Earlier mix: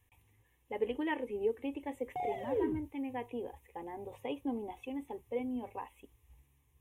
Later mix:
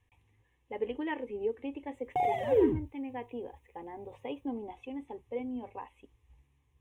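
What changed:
speech: add high-frequency loss of the air 74 metres
background +8.5 dB

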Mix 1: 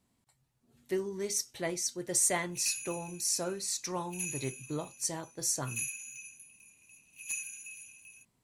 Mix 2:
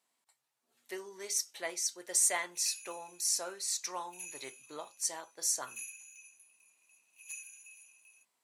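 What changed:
background −8.0 dB
master: add high-pass filter 690 Hz 12 dB per octave

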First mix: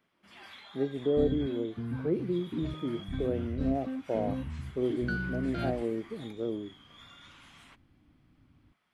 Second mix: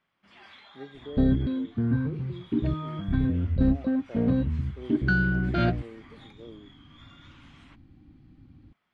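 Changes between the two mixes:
speech −12.0 dB
second sound +10.5 dB
master: add high-frequency loss of the air 86 metres

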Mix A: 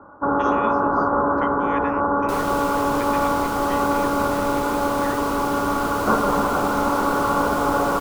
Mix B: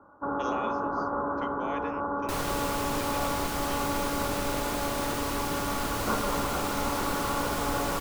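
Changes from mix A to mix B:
speech: remove high-pass with resonance 1,800 Hz, resonance Q 4.5
first sound −10.5 dB

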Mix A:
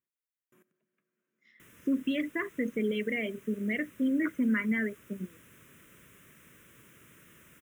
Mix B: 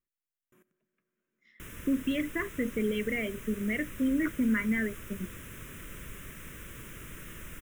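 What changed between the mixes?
background +10.5 dB
master: remove high-pass filter 120 Hz 12 dB per octave

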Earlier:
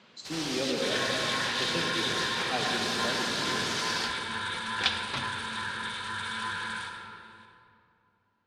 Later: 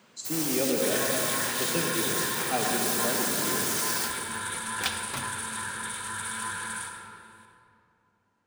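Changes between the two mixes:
speech +4.0 dB
master: remove low-pass with resonance 4,000 Hz, resonance Q 1.7

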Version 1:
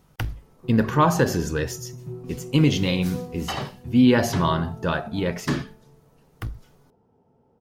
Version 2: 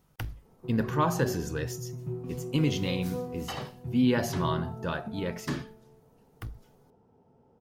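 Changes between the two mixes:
speech −8.0 dB
master: add high-shelf EQ 11,000 Hz +5.5 dB

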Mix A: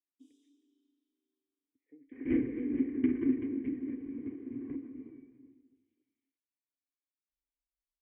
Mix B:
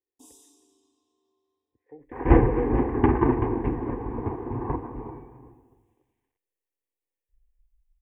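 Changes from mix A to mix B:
speech: add high-frequency loss of the air 360 metres
master: remove formant filter i

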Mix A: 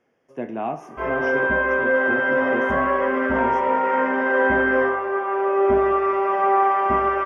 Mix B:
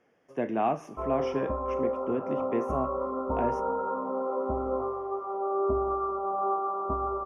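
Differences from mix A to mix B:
background: add linear-phase brick-wall low-pass 1,400 Hz
reverb: off

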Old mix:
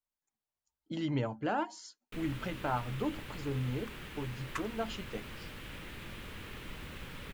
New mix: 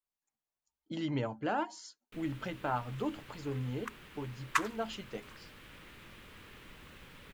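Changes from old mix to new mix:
first sound −7.0 dB
second sound +10.5 dB
master: add low-shelf EQ 170 Hz −4 dB

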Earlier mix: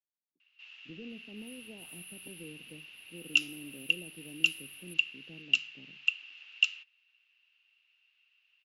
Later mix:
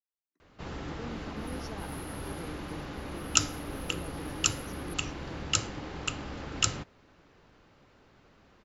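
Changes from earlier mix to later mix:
speech: remove Gaussian smoothing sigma 16 samples
first sound: remove four-pole ladder band-pass 2,800 Hz, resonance 90%

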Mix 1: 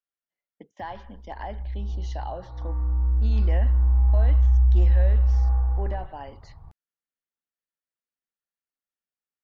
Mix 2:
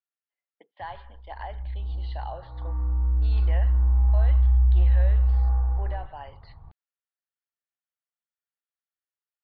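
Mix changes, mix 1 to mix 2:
speech: add high-pass filter 610 Hz 12 dB per octave
master: add Chebyshev low-pass filter 4,500 Hz, order 6

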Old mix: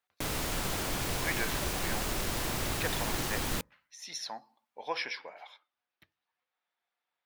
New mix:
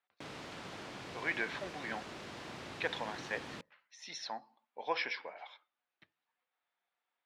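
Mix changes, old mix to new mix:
background −10.5 dB
master: add band-pass filter 140–4,200 Hz

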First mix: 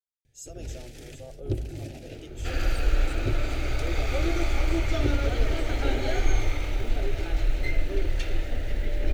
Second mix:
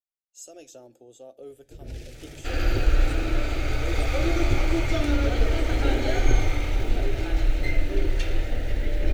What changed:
first sound: entry +1.25 s
second sound: send +9.5 dB

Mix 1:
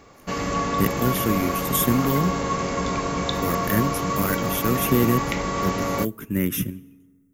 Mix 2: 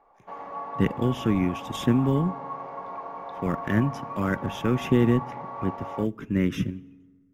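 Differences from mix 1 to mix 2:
background: add resonant band-pass 840 Hz, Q 4.2
master: add high-frequency loss of the air 160 metres

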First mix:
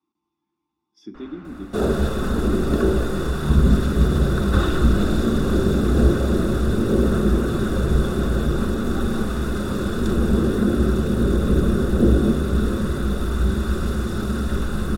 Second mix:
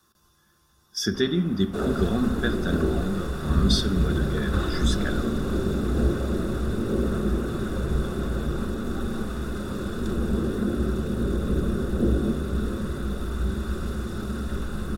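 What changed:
speech: remove formant filter u
second sound −6.5 dB

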